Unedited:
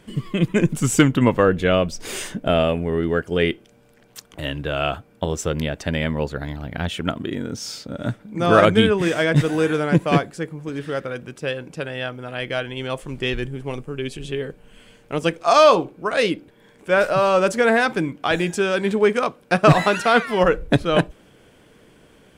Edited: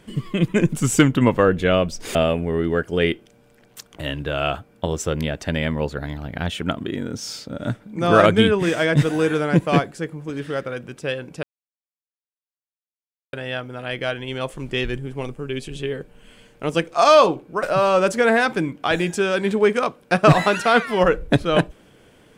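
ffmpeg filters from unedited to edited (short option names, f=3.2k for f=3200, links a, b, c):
-filter_complex "[0:a]asplit=4[a][b][c][d];[a]atrim=end=2.152[e];[b]atrim=start=2.538:end=11.82,asetpts=PTS-STARTPTS,afade=t=out:st=9.278:d=0.004:c=hsin,apad=pad_dur=1.9[f];[c]atrim=start=11.82:end=16.122,asetpts=PTS-STARTPTS,afade=t=in:d=0.004:c=hsin[g];[d]atrim=start=17.028[h];[f][g]concat=n=2:v=0:a=1[i];[e][i]acrossfade=d=0.004:c1=hsin:c2=hsin[j];[j][h]acrossfade=d=0.004:c1=hsin:c2=hsin"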